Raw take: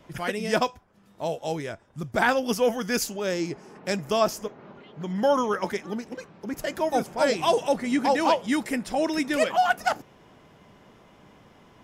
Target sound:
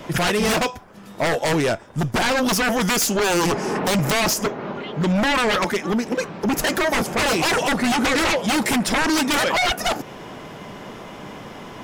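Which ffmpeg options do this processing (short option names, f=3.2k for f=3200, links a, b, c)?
-filter_complex "[0:a]asettb=1/sr,asplit=3[a][b][c];[a]atrim=end=1.734[d];[b]atrim=start=1.73:end=2.21,asetpts=PTS-STARTPTS,afade=t=in:d=0.004:c=qsin,afade=t=out:st=0.476:d=0.004:c=qsin,aeval=exprs='if(lt(val(0),0),0.708*val(0),val(0))':c=same[e];[c]atrim=start=2.206[f];[d][e]acrossfade=d=0.004:c1=hsin:c2=qsin[g];[g][f]acrossfade=d=0.004:c1=qsin:c2=hsin,asettb=1/sr,asplit=3[h][i][j];[h]atrim=end=3.434[k];[i]atrim=start=3.43:end=4.34,asetpts=PTS-STARTPTS,afade=t=in:d=0.004:c=qsin,afade=t=out:st=0.906:d=0.004:c=qsin,acontrast=83[l];[j]atrim=start=4.336[m];[k][l]acrossfade=d=0.004:c1=hsin:c2=qsin[n];[n][m]acrossfade=d=0.004:c1=qsin:c2=hsin,equalizer=f=60:t=o:w=2:g=-7,asettb=1/sr,asplit=3[o][p][q];[o]atrim=end=5.644[r];[p]atrim=start=5.64:end=6.18,asetpts=PTS-STARTPTS,afade=t=in:d=0.004:c=qsin,afade=t=out:st=0.536:d=0.004:c=qsin,acompressor=threshold=-39dB:ratio=1.5[s];[q]atrim=start=6.176[t];[r][s]acrossfade=d=0.004:c1=hsin:c2=qsin[u];[u][t]acrossfade=d=0.004:c1=qsin:c2=hsin,alimiter=limit=-19.5dB:level=0:latency=1:release=216,aeval=exprs='0.158*sin(PI/2*5.01*val(0)/0.158)':c=same"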